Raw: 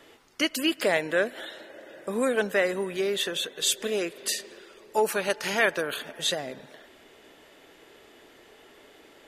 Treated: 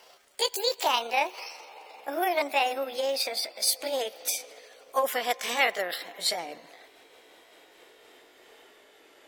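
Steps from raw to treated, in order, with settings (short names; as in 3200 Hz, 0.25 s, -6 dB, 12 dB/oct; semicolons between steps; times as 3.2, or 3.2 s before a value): gliding pitch shift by +8 st ending unshifted; tone controls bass -12 dB, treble +1 dB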